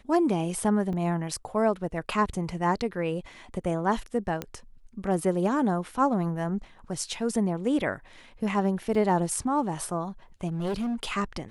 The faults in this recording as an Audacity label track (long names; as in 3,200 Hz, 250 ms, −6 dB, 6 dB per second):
0.930000	0.930000	drop-out 3.3 ms
4.420000	4.420000	click −16 dBFS
8.950000	8.950000	drop-out 3 ms
10.470000	11.100000	clipping −26 dBFS